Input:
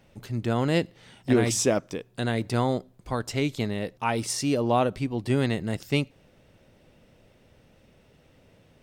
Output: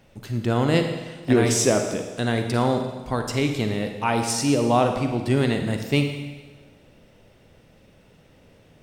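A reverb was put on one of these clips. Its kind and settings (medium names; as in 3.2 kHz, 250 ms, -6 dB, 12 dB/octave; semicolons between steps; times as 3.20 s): Schroeder reverb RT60 1.3 s, DRR 5 dB; trim +3 dB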